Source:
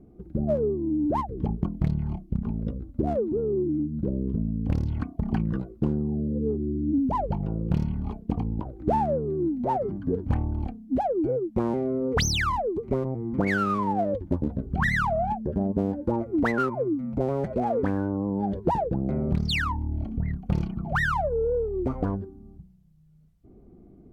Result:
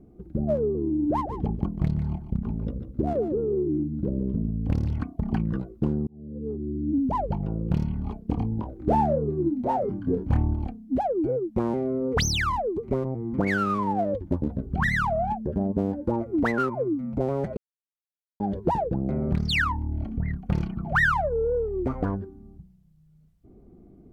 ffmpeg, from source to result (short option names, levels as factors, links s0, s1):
-filter_complex "[0:a]asettb=1/sr,asplit=3[s0][s1][s2];[s0]atrim=end=0.604[s3];[s1]atrim=start=0.6:end=4.96,asetpts=PTS-STARTPTS,afade=t=in:d=0.004:c=qsin,afade=t=out:st=4.356:d=0.004:c=qsin,aecho=1:1:147:0.299,atrim=end_sample=192276[s4];[s2]atrim=start=4.956[s5];[s3][s4]acrossfade=d=0.004:c1=hsin:c2=qsin[s6];[s6][s5]acrossfade=d=0.004:c1=qsin:c2=hsin,asettb=1/sr,asplit=3[s7][s8][s9];[s7]atrim=end=8.234[s10];[s8]atrim=start=8.23:end=10.55,asetpts=PTS-STARTPTS,afade=t=in:d=0.004:c=qsin,afade=t=out:st=2.316:d=0.004:c=qsin,asplit=2[s11][s12];[s12]adelay=27,volume=0.562[s13];[s11][s13]amix=inputs=2:normalize=0,atrim=end_sample=102312[s14];[s9]atrim=start=10.546[s15];[s10][s14]acrossfade=d=0.004:c1=hsin:c2=qsin[s16];[s16][s15]acrossfade=d=0.004:c1=qsin:c2=hsin,asettb=1/sr,asplit=3[s17][s18][s19];[s17]atrim=end=19.224[s20];[s18]atrim=start=19.22:end=22.47,asetpts=PTS-STARTPTS,afade=t=in:d=0.004:c=qsin,afade=t=out:st=3.246:d=0.004:c=qsin,equalizer=f=1700:w=1.5:g=5.5[s21];[s19]atrim=start=22.466[s22];[s20][s21]acrossfade=d=0.004:c1=hsin:c2=qsin[s23];[s23][s22]acrossfade=d=0.004:c1=qsin:c2=hsin,asplit=4[s24][s25][s26][s27];[s24]atrim=end=6.07,asetpts=PTS-STARTPTS,afade=t=out:st=6.066:d=0.004:c=hsin[s28];[s25]atrim=start=6.07:end=17.57,asetpts=PTS-STARTPTS,afade=t=in:d=1.14:c=qsin,afade=t=out:st=11.496:d=0.004:c=hsin[s29];[s26]atrim=start=17.57:end=18.4,asetpts=PTS-STARTPTS,volume=0[s30];[s27]atrim=start=18.4,asetpts=PTS-STARTPTS,afade=t=in:d=0.004:c=hsin[s31];[s28][s29][s30][s31]concat=n=4:v=0:a=1"